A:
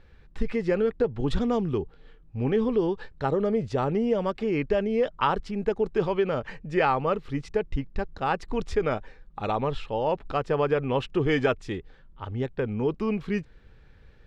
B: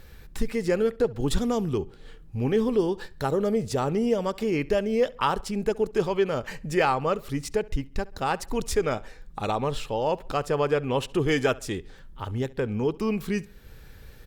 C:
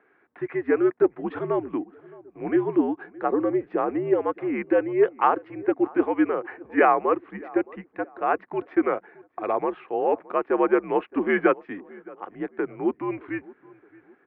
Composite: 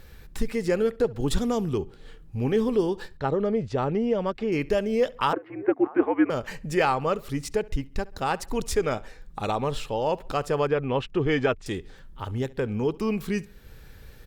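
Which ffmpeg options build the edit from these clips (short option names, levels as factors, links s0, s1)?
-filter_complex "[0:a]asplit=2[s0][s1];[1:a]asplit=4[s2][s3][s4][s5];[s2]atrim=end=3.172[s6];[s0]atrim=start=3.168:end=4.522[s7];[s3]atrim=start=4.518:end=5.332[s8];[2:a]atrim=start=5.328:end=6.302[s9];[s4]atrim=start=6.298:end=10.672[s10];[s1]atrim=start=10.668:end=11.662[s11];[s5]atrim=start=11.658[s12];[s6][s7]acrossfade=d=0.004:c1=hsin:c2=hsin[s13];[s13][s8]acrossfade=d=0.004:c1=hsin:c2=hsin[s14];[s14][s9]acrossfade=d=0.004:c1=hsin:c2=hsin[s15];[s15][s10]acrossfade=d=0.004:c1=hsin:c2=hsin[s16];[s16][s11]acrossfade=d=0.004:c1=hsin:c2=hsin[s17];[s17][s12]acrossfade=d=0.004:c1=hsin:c2=hsin"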